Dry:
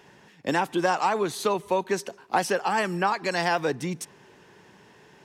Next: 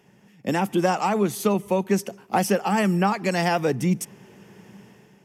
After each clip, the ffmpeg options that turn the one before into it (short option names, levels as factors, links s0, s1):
-af "equalizer=f=125:t=o:w=0.33:g=7,equalizer=f=200:t=o:w=0.33:g=12,equalizer=f=1000:t=o:w=0.33:g=-6,equalizer=f=1600:t=o:w=0.33:g=-6,equalizer=f=4000:t=o:w=0.33:g=-10,equalizer=f=12500:t=o:w=0.33:g=9,dynaudnorm=f=130:g=7:m=2.66,volume=0.562"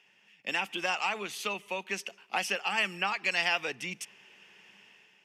-af "bandpass=f=2900:t=q:w=1:csg=0,equalizer=f=2700:w=3.5:g=7"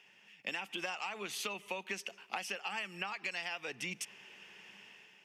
-af "acompressor=threshold=0.0141:ratio=12,volume=1.19"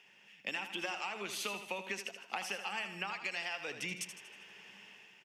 -af "aecho=1:1:79|158|237|316|395|474:0.335|0.167|0.0837|0.0419|0.0209|0.0105"